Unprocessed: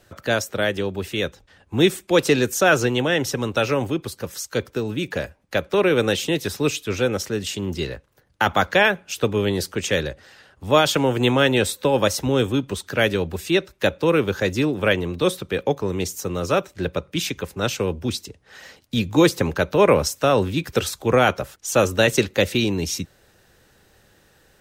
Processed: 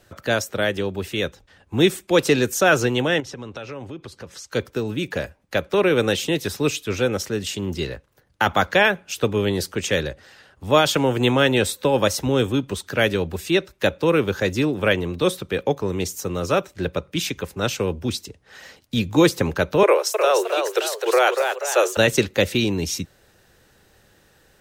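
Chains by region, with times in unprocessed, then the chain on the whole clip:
3.20–4.52 s: distance through air 69 m + compression 3:1, threshold -34 dBFS
19.83–21.97 s: steep high-pass 340 Hz 96 dB/octave + ever faster or slower copies 310 ms, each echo +1 st, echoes 2, each echo -6 dB
whole clip: none

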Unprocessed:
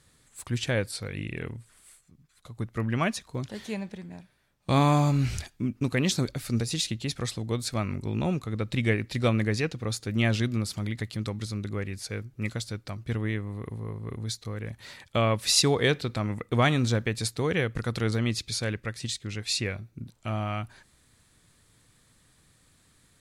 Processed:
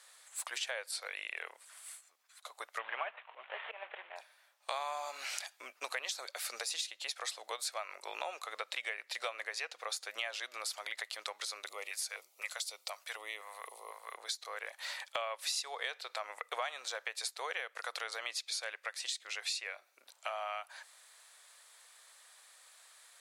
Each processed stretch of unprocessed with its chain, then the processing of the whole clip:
2.79–4.16 s: CVSD coder 16 kbps + slow attack 175 ms
11.66–14.14 s: LFO notch square 2 Hz 360–1600 Hz + treble shelf 5.5 kHz +9.5 dB + compression 2:1, threshold -33 dBFS
whole clip: steep high-pass 600 Hz 36 dB/octave; compression 6:1, threshold -41 dBFS; trim +5 dB

